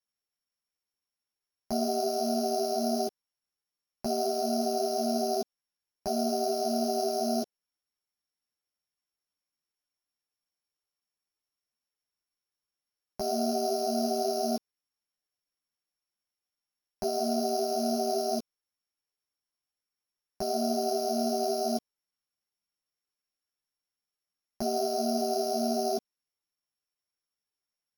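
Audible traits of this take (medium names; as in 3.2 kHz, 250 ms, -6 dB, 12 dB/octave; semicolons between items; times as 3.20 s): a buzz of ramps at a fixed pitch in blocks of 8 samples; a shimmering, thickened sound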